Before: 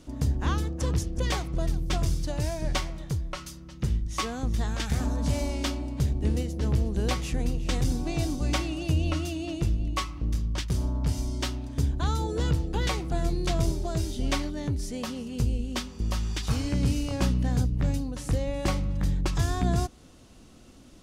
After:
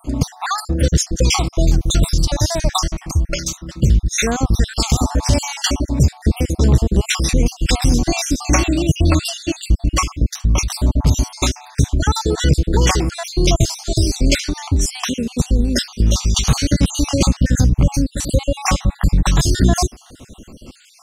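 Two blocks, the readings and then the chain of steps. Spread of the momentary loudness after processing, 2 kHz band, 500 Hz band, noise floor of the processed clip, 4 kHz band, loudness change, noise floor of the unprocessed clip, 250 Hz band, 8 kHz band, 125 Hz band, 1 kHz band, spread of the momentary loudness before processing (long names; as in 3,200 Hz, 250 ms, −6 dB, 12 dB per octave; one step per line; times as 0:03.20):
5 LU, +12.0 dB, +10.5 dB, −46 dBFS, +14.0 dB, +11.5 dB, −50 dBFS, +11.0 dB, +17.5 dB, +10.5 dB, +11.0 dB, 5 LU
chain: time-frequency cells dropped at random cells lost 53%
dynamic equaliser 6,000 Hz, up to +8 dB, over −56 dBFS, Q 1.2
in parallel at +3 dB: brickwall limiter −22.5 dBFS, peak gain reduction 9 dB
on the sum: level +8 dB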